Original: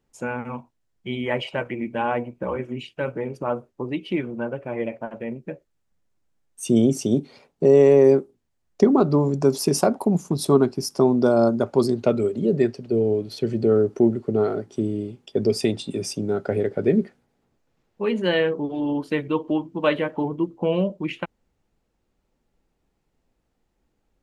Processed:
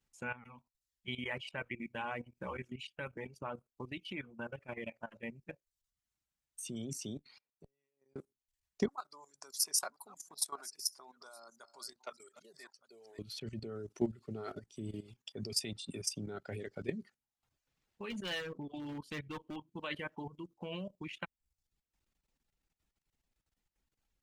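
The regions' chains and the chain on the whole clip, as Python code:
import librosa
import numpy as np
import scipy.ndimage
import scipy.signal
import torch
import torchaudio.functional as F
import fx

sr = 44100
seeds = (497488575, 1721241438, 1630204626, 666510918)

y = fx.chain(x, sr, fx.level_steps(step_db=17),
    fx.gate_flip(shuts_db=-23.0, range_db=-41), at=(7.17, 8.16))
y = fx.chain(y, sr, fx.reverse_delay(ms=670, wet_db=-14.0),
    fx.highpass(hz=1200.0, slope=12),
    fx.peak_eq(hz=2800.0, db=-12.5, octaves=0.94), at=(8.88, 13.19))
y = fx.chain(y, sr, fx.low_shelf(hz=160.0, db=7.0),
    fx.overload_stage(gain_db=18.0), at=(18.1, 19.56))
y = fx.dereverb_blind(y, sr, rt60_s=0.55)
y = fx.level_steps(y, sr, step_db=15)
y = fx.tone_stack(y, sr, knobs='5-5-5')
y = y * librosa.db_to_amplitude(7.0)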